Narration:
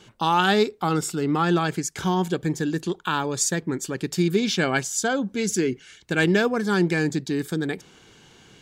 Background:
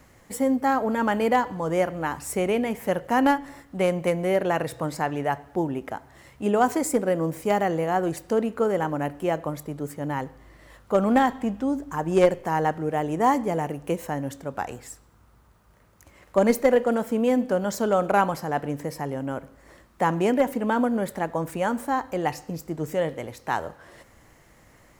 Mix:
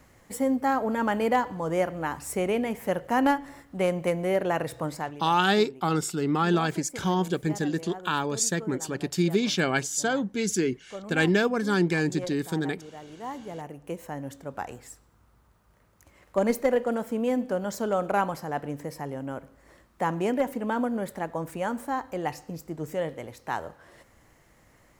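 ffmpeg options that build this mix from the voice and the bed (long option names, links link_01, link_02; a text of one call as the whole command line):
ffmpeg -i stem1.wav -i stem2.wav -filter_complex "[0:a]adelay=5000,volume=-2.5dB[link_01];[1:a]volume=11dB,afade=type=out:start_time=4.89:duration=0.33:silence=0.16788,afade=type=in:start_time=13.2:duration=1.32:silence=0.211349[link_02];[link_01][link_02]amix=inputs=2:normalize=0" out.wav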